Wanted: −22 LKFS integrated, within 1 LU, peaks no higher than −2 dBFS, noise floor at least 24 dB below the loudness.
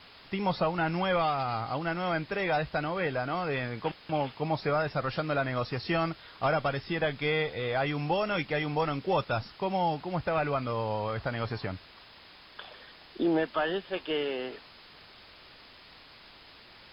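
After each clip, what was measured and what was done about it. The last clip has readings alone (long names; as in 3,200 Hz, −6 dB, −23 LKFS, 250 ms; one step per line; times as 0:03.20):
background noise floor −53 dBFS; target noise floor −55 dBFS; integrated loudness −30.5 LKFS; sample peak −17.5 dBFS; target loudness −22.0 LKFS
→ noise reduction from a noise print 6 dB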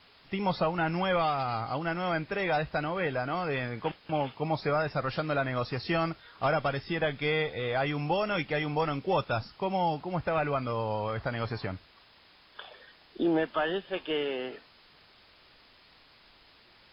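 background noise floor −59 dBFS; integrated loudness −30.5 LKFS; sample peak −17.5 dBFS; target loudness −22.0 LKFS
→ level +8.5 dB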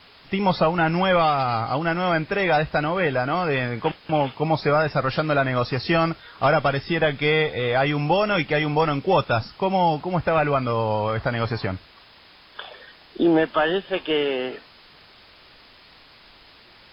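integrated loudness −22.0 LKFS; sample peak −9.0 dBFS; background noise floor −51 dBFS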